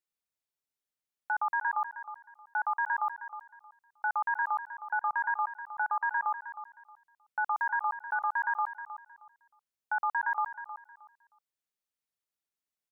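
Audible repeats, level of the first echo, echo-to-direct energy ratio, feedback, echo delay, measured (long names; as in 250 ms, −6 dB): 2, −12.0 dB, −11.5 dB, 24%, 313 ms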